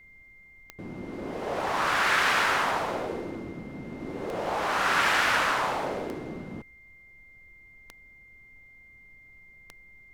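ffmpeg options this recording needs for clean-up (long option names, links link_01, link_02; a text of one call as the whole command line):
ffmpeg -i in.wav -af "adeclick=threshold=4,bandreject=frequency=2100:width=30,agate=range=-21dB:threshold=-46dB" out.wav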